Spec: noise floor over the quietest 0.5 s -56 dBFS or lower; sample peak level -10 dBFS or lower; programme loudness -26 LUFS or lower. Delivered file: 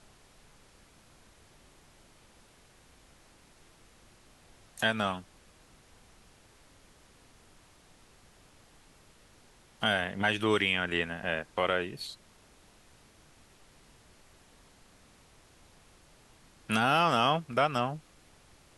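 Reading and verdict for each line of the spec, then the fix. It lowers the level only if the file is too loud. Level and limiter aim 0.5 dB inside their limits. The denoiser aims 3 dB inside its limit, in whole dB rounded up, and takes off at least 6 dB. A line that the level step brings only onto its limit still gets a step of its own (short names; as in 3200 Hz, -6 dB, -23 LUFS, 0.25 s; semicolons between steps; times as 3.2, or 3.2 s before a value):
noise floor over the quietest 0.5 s -60 dBFS: OK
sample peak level -12.0 dBFS: OK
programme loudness -29.5 LUFS: OK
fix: none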